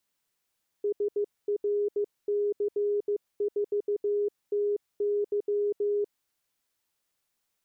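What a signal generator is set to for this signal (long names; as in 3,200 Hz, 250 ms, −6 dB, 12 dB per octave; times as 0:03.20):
Morse code "SRC4TY" 15 words per minute 411 Hz −24 dBFS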